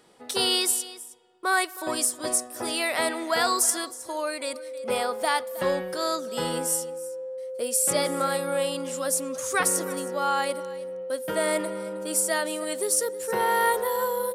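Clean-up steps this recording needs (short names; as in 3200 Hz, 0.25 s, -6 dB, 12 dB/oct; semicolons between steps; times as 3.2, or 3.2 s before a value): notch 520 Hz, Q 30; inverse comb 0.316 s -17.5 dB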